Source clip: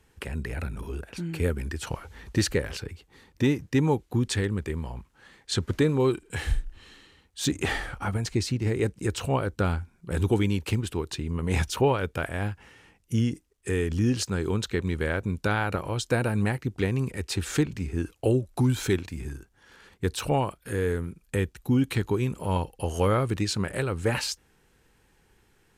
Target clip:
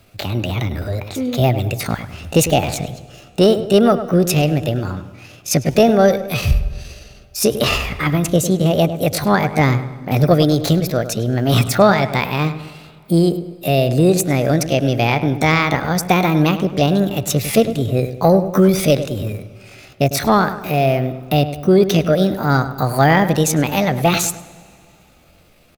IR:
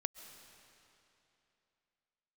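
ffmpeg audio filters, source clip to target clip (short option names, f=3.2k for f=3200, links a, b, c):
-filter_complex "[0:a]acontrast=88,asetrate=66075,aresample=44100,atempo=0.66742,asplit=2[a][b];[b]adelay=102,lowpass=f=2k:p=1,volume=-11dB,asplit=2[c][d];[d]adelay=102,lowpass=f=2k:p=1,volume=0.49,asplit=2[e][f];[f]adelay=102,lowpass=f=2k:p=1,volume=0.49,asplit=2[g][h];[h]adelay=102,lowpass=f=2k:p=1,volume=0.49,asplit=2[i][j];[j]adelay=102,lowpass=f=2k:p=1,volume=0.49[k];[a][c][e][g][i][k]amix=inputs=6:normalize=0,asplit=2[l][m];[1:a]atrim=start_sample=2205[n];[m][n]afir=irnorm=-1:irlink=0,volume=-11.5dB[o];[l][o]amix=inputs=2:normalize=0,volume=2dB"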